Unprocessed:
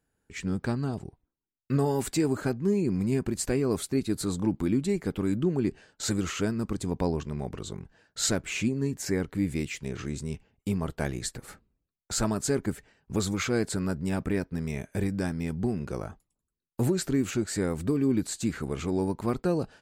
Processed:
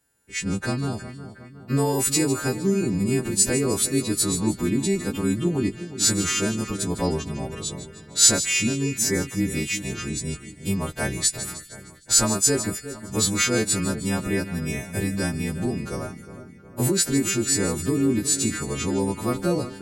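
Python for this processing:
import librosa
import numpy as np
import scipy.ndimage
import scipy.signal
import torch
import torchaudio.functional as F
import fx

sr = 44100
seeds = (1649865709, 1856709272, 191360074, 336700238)

y = fx.freq_snap(x, sr, grid_st=2)
y = fx.quant_float(y, sr, bits=8)
y = fx.echo_split(y, sr, split_hz=2400.0, low_ms=363, high_ms=154, feedback_pct=52, wet_db=-12.5)
y = y * librosa.db_to_amplitude(4.0)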